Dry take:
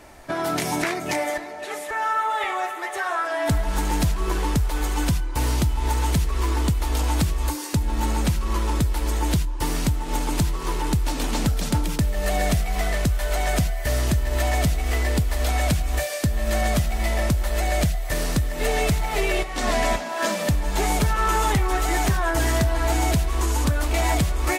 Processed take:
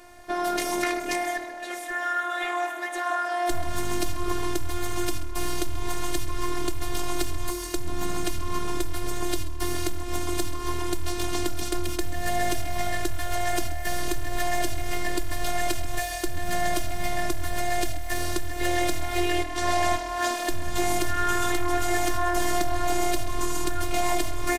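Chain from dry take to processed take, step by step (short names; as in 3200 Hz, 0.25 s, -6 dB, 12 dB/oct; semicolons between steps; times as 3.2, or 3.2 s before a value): robotiser 353 Hz; frequency-shifting echo 0.133 s, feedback 30%, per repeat -39 Hz, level -16 dB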